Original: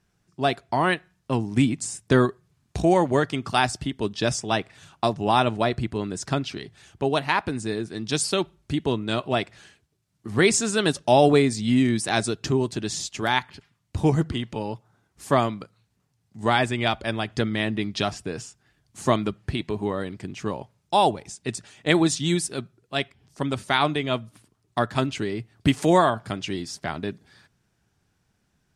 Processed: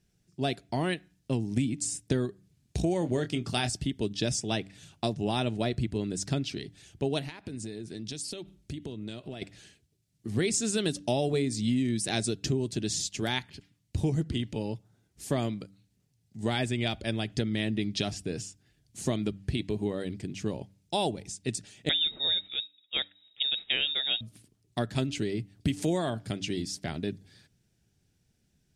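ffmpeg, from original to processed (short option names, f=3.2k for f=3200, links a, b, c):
-filter_complex "[0:a]asettb=1/sr,asplit=3[a][b][c];[a]atrim=end=2.994[d];[b]atrim=start=2.99:end=3.7,asetpts=PTS-STARTPTS,afade=t=in:d=0.004:c=qsin,afade=t=out:st=0.706:d=0.004:c=qsin,asplit=2[e][f];[f]adelay=25,volume=-10dB[g];[e][g]amix=inputs=2:normalize=0,atrim=end_sample=31311[h];[c]atrim=start=3.696[i];[d][h]acrossfade=d=0.004:c1=hsin:c2=qsin[j];[j][i]acrossfade=d=0.004:c1=qsin:c2=hsin,asettb=1/sr,asplit=3[k][l][m];[k]atrim=end=7.224[n];[l]atrim=start=7.22:end=9.42,asetpts=PTS-STARTPTS,afade=t=in:d=0.004:c=qsin,afade=t=out:st=2.196:d=0.004:c=qsin,acompressor=threshold=-32dB:ratio=10:attack=3.2:release=140:knee=1:detection=peak[o];[m]atrim=start=9.416[p];[n][o]acrossfade=d=0.004:c1=hsin:c2=qsin[q];[q][p]acrossfade=d=0.004:c1=qsin:c2=hsin,asettb=1/sr,asplit=3[r][s][t];[r]atrim=end=21.894[u];[s]atrim=start=21.89:end=24.21,asetpts=PTS-STARTPTS,afade=t=in:d=0.004:c=qsin,afade=t=out:st=2.316:d=0.004:c=qsin,lowpass=f=3.3k:t=q:w=0.5098,lowpass=f=3.3k:t=q:w=0.6013,lowpass=f=3.3k:t=q:w=0.9,lowpass=f=3.3k:t=q:w=2.563,afreqshift=-3900[v];[t]atrim=start=24.206[w];[u][v]acrossfade=d=0.004:c1=hsin:c2=qsin[x];[x][w]acrossfade=d=0.004:c1=qsin:c2=hsin,equalizer=f=1.1k:w=0.99:g=-15,bandreject=f=96.97:t=h:w=4,bandreject=f=193.94:t=h:w=4,bandreject=f=290.91:t=h:w=4,acompressor=threshold=-24dB:ratio=6"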